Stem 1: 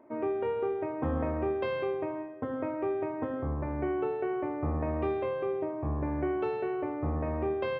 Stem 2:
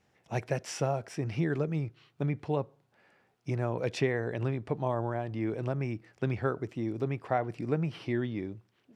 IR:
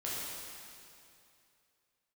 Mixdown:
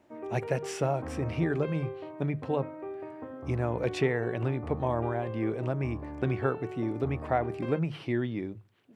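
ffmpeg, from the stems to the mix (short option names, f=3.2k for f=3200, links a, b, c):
-filter_complex "[0:a]volume=-8dB[a];[1:a]volume=1.5dB[b];[a][b]amix=inputs=2:normalize=0,equalizer=f=5.4k:t=o:w=0.53:g=-5.5,bandreject=f=50:t=h:w=6,bandreject=f=100:t=h:w=6,bandreject=f=150:t=h:w=6"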